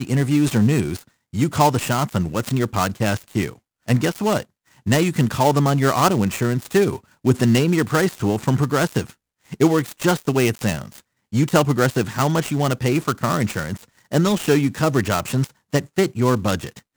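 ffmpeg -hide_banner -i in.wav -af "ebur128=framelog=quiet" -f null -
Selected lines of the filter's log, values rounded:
Integrated loudness:
  I:         -20.2 LUFS
  Threshold: -30.5 LUFS
Loudness range:
  LRA:         2.8 LU
  Threshold: -40.5 LUFS
  LRA low:   -21.6 LUFS
  LRA high:  -18.8 LUFS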